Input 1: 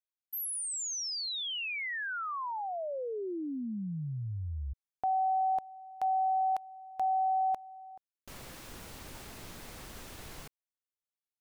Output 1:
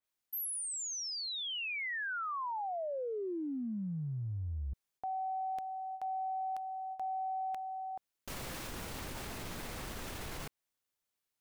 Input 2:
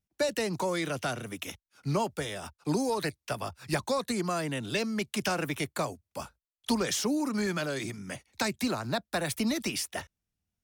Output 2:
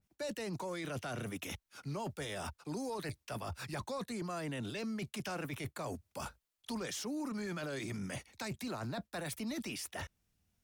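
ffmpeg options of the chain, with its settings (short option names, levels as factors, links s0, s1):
-af "areverse,acompressor=threshold=0.00708:ratio=10:attack=0.8:release=64:knee=1:detection=rms,areverse,adynamicequalizer=threshold=0.001:dfrequency=3300:dqfactor=0.7:tfrequency=3300:tqfactor=0.7:attack=5:release=100:ratio=0.375:range=1.5:mode=cutabove:tftype=highshelf,volume=2.37"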